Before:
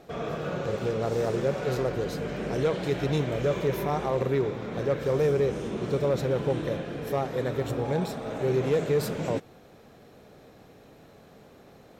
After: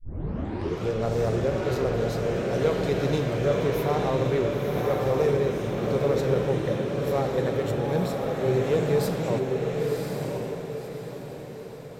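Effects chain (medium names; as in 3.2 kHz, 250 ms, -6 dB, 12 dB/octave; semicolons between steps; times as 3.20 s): tape start-up on the opening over 0.88 s; echo that smears into a reverb 1039 ms, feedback 42%, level -3 dB; on a send at -8.5 dB: reverberation RT60 1.1 s, pre-delay 5 ms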